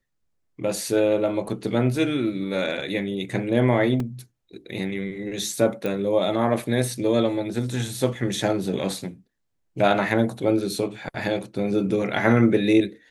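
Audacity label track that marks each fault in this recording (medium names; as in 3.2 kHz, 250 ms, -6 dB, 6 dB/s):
4.000000	4.000000	dropout 2.4 ms
5.860000	5.860000	pop -15 dBFS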